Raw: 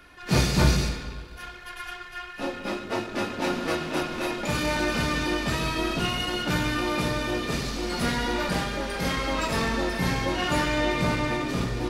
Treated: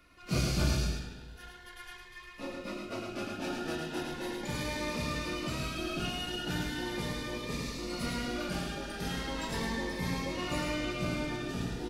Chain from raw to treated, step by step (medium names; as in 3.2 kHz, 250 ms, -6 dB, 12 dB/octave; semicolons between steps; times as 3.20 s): delay 107 ms -4 dB; Shepard-style phaser rising 0.38 Hz; trim -8.5 dB